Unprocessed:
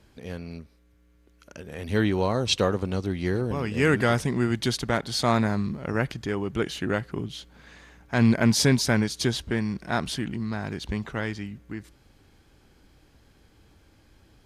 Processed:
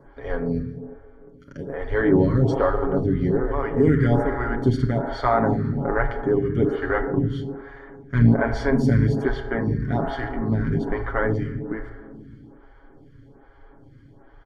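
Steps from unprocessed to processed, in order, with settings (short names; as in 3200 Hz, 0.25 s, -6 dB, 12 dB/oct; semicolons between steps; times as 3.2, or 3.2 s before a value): octaver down 2 oct, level -2 dB; notches 50/100/150/200/250 Hz; comb 7.3 ms, depth 70%; in parallel at -1.5 dB: vocal rider 2 s; on the sum: limiter -6.5 dBFS, peak gain reduction 6.5 dB; polynomial smoothing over 41 samples; dark delay 0.145 s, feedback 65%, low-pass 570 Hz, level -12 dB; on a send at -6.5 dB: reverb RT60 2.0 s, pre-delay 28 ms; on the sum: photocell phaser 1.2 Hz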